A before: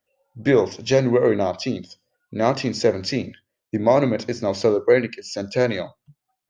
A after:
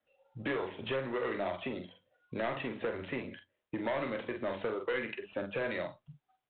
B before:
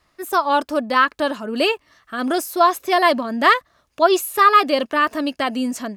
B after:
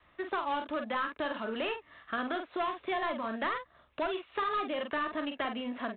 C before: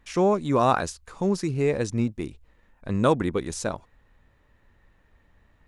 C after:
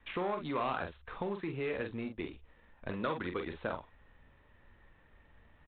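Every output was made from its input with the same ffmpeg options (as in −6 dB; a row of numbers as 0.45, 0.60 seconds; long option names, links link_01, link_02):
-filter_complex "[0:a]acompressor=threshold=-27dB:ratio=1.5,lowshelf=frequency=380:gain=-3,aresample=16000,asoftclip=type=tanh:threshold=-18.5dB,aresample=44100,adynamicequalizer=threshold=0.00398:dfrequency=130:dqfactor=3.3:tfrequency=130:tqfactor=3.3:attack=5:release=100:ratio=0.375:range=2.5:mode=cutabove:tftype=bell,asplit=2[link_01][link_02];[link_02]aecho=0:1:13|45:0.2|0.447[link_03];[link_01][link_03]amix=inputs=2:normalize=0,acrossover=split=350|920|2200[link_04][link_05][link_06][link_07];[link_04]acompressor=threshold=-43dB:ratio=4[link_08];[link_05]acompressor=threshold=-39dB:ratio=4[link_09];[link_06]acompressor=threshold=-36dB:ratio=4[link_10];[link_07]acompressor=threshold=-45dB:ratio=4[link_11];[link_08][link_09][link_10][link_11]amix=inputs=4:normalize=0" -ar 8000 -c:a adpcm_ima_wav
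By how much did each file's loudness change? −15.5, −16.0, −13.0 LU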